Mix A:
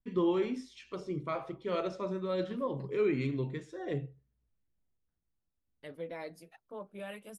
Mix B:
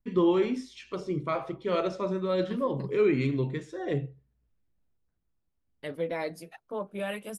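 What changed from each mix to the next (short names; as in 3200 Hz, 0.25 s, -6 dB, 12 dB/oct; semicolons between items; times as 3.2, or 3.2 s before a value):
first voice +5.5 dB; second voice +9.5 dB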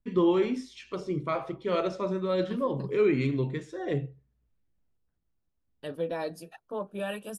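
second voice: add Butterworth band-stop 2100 Hz, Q 4.5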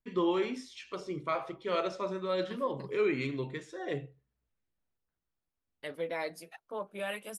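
second voice: remove Butterworth band-stop 2100 Hz, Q 4.5; master: add low shelf 370 Hz -11.5 dB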